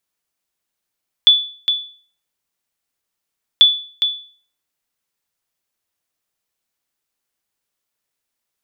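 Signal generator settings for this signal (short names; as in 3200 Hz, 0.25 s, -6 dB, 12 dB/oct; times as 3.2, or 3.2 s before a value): sonar ping 3460 Hz, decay 0.44 s, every 2.34 s, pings 2, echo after 0.41 s, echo -8 dB -2 dBFS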